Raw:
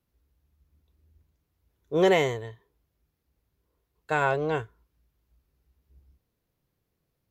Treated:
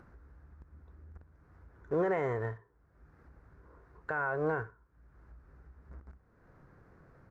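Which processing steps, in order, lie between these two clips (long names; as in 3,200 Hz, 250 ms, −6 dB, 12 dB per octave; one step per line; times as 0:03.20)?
in parallel at −6.5 dB: log-companded quantiser 4 bits
on the sum: low-pass filter 5,600 Hz 12 dB per octave
high shelf with overshoot 2,200 Hz −13 dB, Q 3
downward compressor 6 to 1, threshold −26 dBFS, peak gain reduction 13 dB
brickwall limiter −23 dBFS, peak gain reduction 9.5 dB
on a send: repeating echo 63 ms, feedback 28%, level −19 dB
on the sum: upward compression, threshold −42 dBFS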